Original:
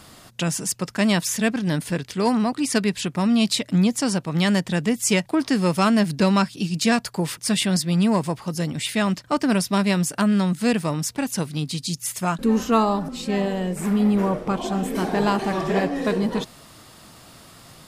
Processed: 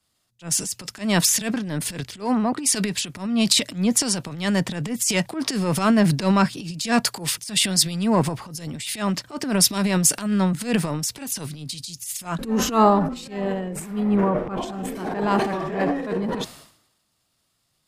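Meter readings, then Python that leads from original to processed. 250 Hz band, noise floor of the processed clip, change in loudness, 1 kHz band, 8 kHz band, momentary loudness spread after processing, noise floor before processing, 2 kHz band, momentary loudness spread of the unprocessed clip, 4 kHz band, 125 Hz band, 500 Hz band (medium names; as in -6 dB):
-2.0 dB, -71 dBFS, 0.0 dB, +0.5 dB, +5.5 dB, 11 LU, -47 dBFS, -2.0 dB, 7 LU, +2.5 dB, -2.0 dB, -1.5 dB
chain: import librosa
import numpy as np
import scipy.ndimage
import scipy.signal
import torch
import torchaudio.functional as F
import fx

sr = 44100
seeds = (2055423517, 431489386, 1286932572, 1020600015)

y = fx.low_shelf(x, sr, hz=150.0, db=-5.0)
y = fx.transient(y, sr, attack_db=-11, sustain_db=9)
y = fx.band_widen(y, sr, depth_pct=100)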